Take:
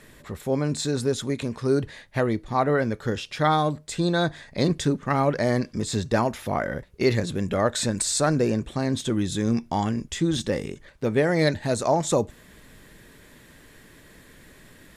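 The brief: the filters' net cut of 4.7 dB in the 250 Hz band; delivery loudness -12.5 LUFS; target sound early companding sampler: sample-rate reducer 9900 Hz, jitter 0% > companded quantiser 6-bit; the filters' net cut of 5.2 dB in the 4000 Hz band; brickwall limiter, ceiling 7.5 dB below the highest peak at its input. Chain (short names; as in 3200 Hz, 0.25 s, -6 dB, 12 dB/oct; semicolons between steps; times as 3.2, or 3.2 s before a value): bell 250 Hz -6.5 dB; bell 4000 Hz -6 dB; limiter -16.5 dBFS; sample-rate reducer 9900 Hz, jitter 0%; companded quantiser 6-bit; gain +16 dB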